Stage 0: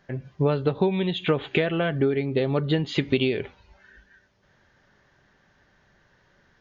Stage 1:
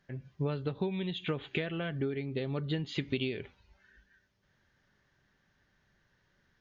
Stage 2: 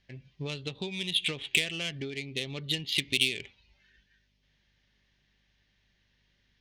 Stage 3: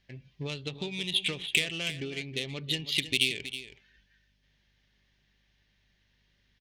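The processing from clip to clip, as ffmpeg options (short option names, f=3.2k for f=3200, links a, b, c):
-af "equalizer=f=680:t=o:w=2.1:g=-6,volume=-8dB"
-af "aeval=exprs='val(0)+0.000355*(sin(2*PI*50*n/s)+sin(2*PI*2*50*n/s)/2+sin(2*PI*3*50*n/s)/3+sin(2*PI*4*50*n/s)/4+sin(2*PI*5*50*n/s)/5)':c=same,adynamicsmooth=sensitivity=6.5:basefreq=2.3k,aexciter=amount=7.5:drive=8.4:freq=2.2k,volume=-4.5dB"
-af "aecho=1:1:321:0.237"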